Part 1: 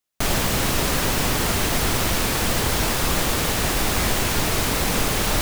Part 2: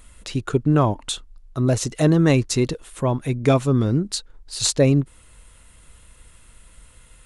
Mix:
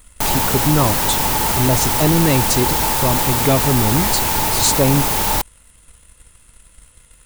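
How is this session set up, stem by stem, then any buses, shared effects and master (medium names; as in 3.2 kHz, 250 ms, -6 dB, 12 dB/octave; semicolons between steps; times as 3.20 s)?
+0.5 dB, 0.00 s, no send, peaking EQ 880 Hz +15 dB 0.24 oct
-0.5 dB, 0.00 s, no send, waveshaping leveller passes 1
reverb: none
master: treble shelf 9.6 kHz +11 dB; saturation -6 dBFS, distortion -20 dB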